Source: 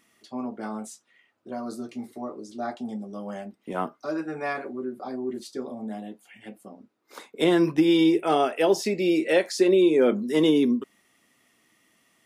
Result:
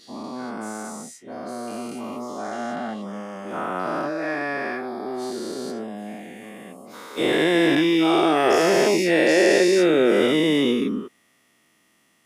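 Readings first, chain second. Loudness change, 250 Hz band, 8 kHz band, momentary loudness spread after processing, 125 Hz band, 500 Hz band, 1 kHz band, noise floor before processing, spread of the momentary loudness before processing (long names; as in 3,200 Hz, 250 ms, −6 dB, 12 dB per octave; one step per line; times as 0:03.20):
+3.5 dB, +2.0 dB, +7.5 dB, 18 LU, +2.5 dB, +3.5 dB, +5.5 dB, −66 dBFS, 17 LU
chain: every bin's largest magnitude spread in time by 480 ms
dynamic equaliser 1,800 Hz, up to +5 dB, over −37 dBFS, Q 3
level −4 dB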